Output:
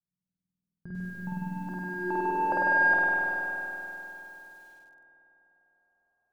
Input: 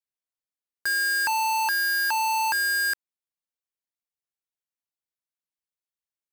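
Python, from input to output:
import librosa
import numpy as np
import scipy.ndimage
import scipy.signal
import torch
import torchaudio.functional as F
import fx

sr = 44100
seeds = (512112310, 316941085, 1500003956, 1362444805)

y = fx.zero_step(x, sr, step_db=-41.0, at=(0.86, 1.51))
y = fx.filter_sweep_lowpass(y, sr, from_hz=180.0, to_hz=730.0, start_s=1.37, end_s=2.88, q=7.9)
y = fx.rev_spring(y, sr, rt60_s=3.5, pass_ms=(49,), chirp_ms=45, drr_db=-7.0)
y = fx.echo_crushed(y, sr, ms=93, feedback_pct=80, bits=10, wet_db=-11.5)
y = y * librosa.db_to_amplitude(6.5)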